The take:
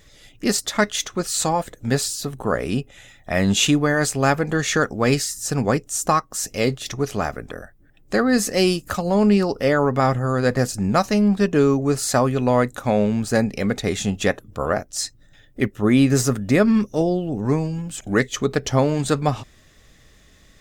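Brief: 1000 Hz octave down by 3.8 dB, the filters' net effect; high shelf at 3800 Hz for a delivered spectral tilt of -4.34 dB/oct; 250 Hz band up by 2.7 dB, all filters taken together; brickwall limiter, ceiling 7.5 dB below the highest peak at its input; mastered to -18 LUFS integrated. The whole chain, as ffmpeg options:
-af "equalizer=f=250:t=o:g=3.5,equalizer=f=1k:t=o:g=-6,highshelf=f=3.8k:g=7,volume=3dB,alimiter=limit=-7.5dB:level=0:latency=1"

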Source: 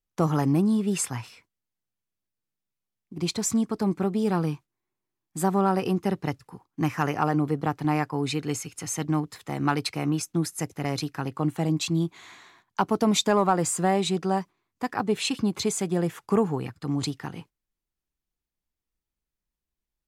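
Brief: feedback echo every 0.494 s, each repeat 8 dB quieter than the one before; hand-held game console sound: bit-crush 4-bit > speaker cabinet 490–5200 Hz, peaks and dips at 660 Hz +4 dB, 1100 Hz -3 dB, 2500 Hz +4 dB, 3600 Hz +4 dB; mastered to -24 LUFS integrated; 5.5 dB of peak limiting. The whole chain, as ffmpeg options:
-af "alimiter=limit=-15dB:level=0:latency=1,aecho=1:1:494|988|1482|1976|2470:0.398|0.159|0.0637|0.0255|0.0102,acrusher=bits=3:mix=0:aa=0.000001,highpass=490,equalizer=f=660:t=q:w=4:g=4,equalizer=f=1.1k:t=q:w=4:g=-3,equalizer=f=2.5k:t=q:w=4:g=4,equalizer=f=3.6k:t=q:w=4:g=4,lowpass=f=5.2k:w=0.5412,lowpass=f=5.2k:w=1.3066,volume=5dB"

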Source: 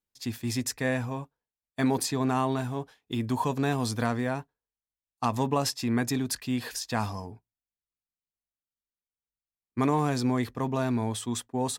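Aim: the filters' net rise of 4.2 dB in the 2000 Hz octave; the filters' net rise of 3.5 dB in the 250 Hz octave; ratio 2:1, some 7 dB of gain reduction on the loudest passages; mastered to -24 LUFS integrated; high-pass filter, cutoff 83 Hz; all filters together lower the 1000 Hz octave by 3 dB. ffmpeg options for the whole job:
-af "highpass=83,equalizer=f=250:t=o:g=4,equalizer=f=1k:t=o:g=-5.5,equalizer=f=2k:t=o:g=7,acompressor=threshold=-31dB:ratio=2,volume=9dB"

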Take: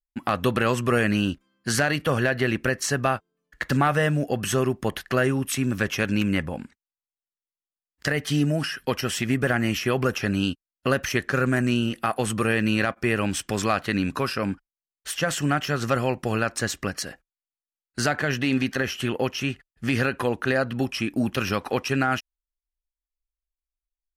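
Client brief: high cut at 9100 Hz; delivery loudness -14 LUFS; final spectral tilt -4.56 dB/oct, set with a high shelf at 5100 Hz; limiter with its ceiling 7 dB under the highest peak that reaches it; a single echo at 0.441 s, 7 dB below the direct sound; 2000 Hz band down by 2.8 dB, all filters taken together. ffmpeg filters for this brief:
-af "lowpass=9.1k,equalizer=f=2k:t=o:g=-4.5,highshelf=f=5.1k:g=4.5,alimiter=limit=-18.5dB:level=0:latency=1,aecho=1:1:441:0.447,volume=14.5dB"

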